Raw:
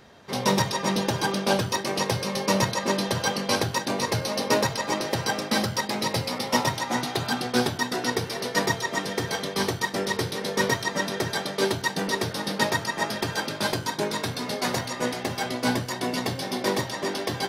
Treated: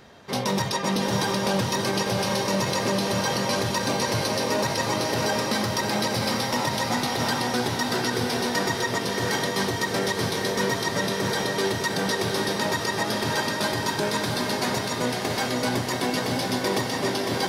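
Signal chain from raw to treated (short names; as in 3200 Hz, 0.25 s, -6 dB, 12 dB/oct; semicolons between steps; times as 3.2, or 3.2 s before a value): diffused feedback echo 0.704 s, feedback 42%, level -5 dB; limiter -16.5 dBFS, peak gain reduction 8.5 dB; gain +2 dB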